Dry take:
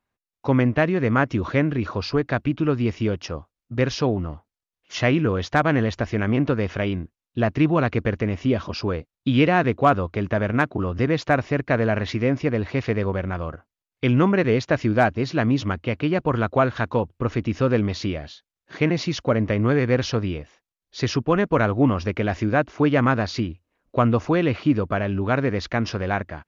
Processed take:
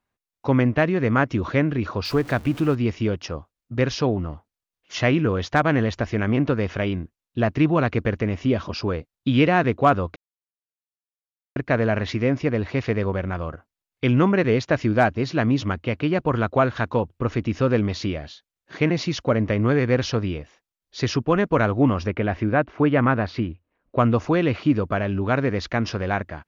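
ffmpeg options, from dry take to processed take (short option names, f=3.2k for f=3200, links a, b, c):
-filter_complex "[0:a]asettb=1/sr,asplit=3[a][b][c];[a]atrim=end=2.054[d];[b]atrim=start=2.05:end=2.75,asetpts=PTS-STARTPTS,afade=t=in:d=0.004:c=qsin,afade=t=out:st=0.696:d=0.004:c=qsin,aeval=exprs='val(0)+0.5*0.0178*sgn(val(0))':c=same[e];[c]atrim=start=2.746[f];[d][e]acrossfade=d=0.004:c1=hsin:c2=qsin[g];[g][f]acrossfade=d=0.004:c1=qsin:c2=hsin,asettb=1/sr,asplit=3[h][i][j];[h]atrim=end=22.074[k];[i]atrim=start=22.07:end=23.99,asetpts=PTS-STARTPTS,afade=t=in:d=0.004:c=qsin,afade=t=out:st=1.916:d=0.004:c=qsin,lowpass=2.8k[l];[j]atrim=start=23.986[m];[k][l]acrossfade=d=0.004:c1=hsin:c2=qsin[n];[n][m]acrossfade=d=0.004:c1=qsin:c2=hsin,asplit=3[o][p][q];[o]atrim=end=10.16,asetpts=PTS-STARTPTS,afade=t=out:st=10.156:d=0.004:c=hsin[r];[p]atrim=start=10.16:end=11.56,asetpts=PTS-STARTPTS,volume=0[s];[q]atrim=start=11.56,asetpts=PTS-STARTPTS,afade=t=in:d=0.004:c=hsin[t];[r][s][t]concat=n=3:v=0:a=1"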